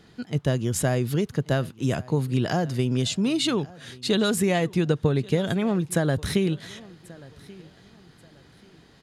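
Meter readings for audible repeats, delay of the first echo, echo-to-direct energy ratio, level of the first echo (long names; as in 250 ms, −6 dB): 2, 1,134 ms, −21.5 dB, −22.0 dB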